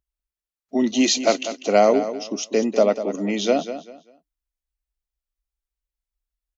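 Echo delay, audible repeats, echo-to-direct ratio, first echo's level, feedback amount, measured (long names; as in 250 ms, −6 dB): 196 ms, 3, −11.0 dB, −11.5 dB, 26%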